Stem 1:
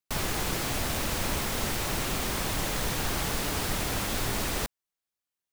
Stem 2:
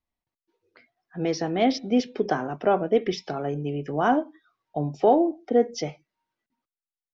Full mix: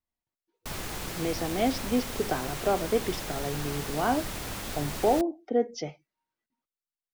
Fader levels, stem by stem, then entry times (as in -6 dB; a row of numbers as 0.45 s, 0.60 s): -6.0 dB, -5.0 dB; 0.55 s, 0.00 s